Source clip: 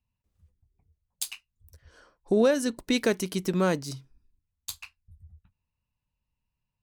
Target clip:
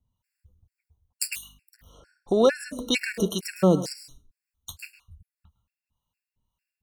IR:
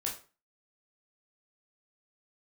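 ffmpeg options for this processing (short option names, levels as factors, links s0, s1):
-filter_complex "[0:a]acrossover=split=640[s0][s1];[s0]aeval=exprs='val(0)*(1-0.7/2+0.7/2*cos(2*PI*1.9*n/s))':c=same[s2];[s1]aeval=exprs='val(0)*(1-0.7/2-0.7/2*cos(2*PI*1.9*n/s))':c=same[s3];[s2][s3]amix=inputs=2:normalize=0,asettb=1/sr,asplit=3[s4][s5][s6];[s4]atrim=end=1.314[s7];[s5]atrim=start=1.31:end=3.27,asetpts=PTS-STARTPTS,afade=t=in:d=0.004:c=qsin,afade=t=out:st=1.956:d=0.004:c=qsin,aeval=exprs='val(0)+0.000631*(sin(2*PI*50*n/s)+sin(2*PI*2*50*n/s)/2+sin(2*PI*3*50*n/s)/3+sin(2*PI*4*50*n/s)/4+sin(2*PI*5*50*n/s)/5)':c=same[s8];[s6]atrim=start=3.266[s9];[s7][s8]acrossfade=d=0.004:c1=hsin:c2=qsin[s10];[s10][s9]acrossfade=d=0.004:c1=qsin:c2=hsin,asplit=2[s11][s12];[1:a]atrim=start_sample=2205,highshelf=f=8200:g=11.5,adelay=107[s13];[s12][s13]afir=irnorm=-1:irlink=0,volume=0.168[s14];[s11][s14]amix=inputs=2:normalize=0,afftfilt=real='re*gt(sin(2*PI*2.2*pts/sr)*(1-2*mod(floor(b*sr/1024/1400),2)),0)':imag='im*gt(sin(2*PI*2.2*pts/sr)*(1-2*mod(floor(b*sr/1024/1400),2)),0)':win_size=1024:overlap=0.75,volume=2.66"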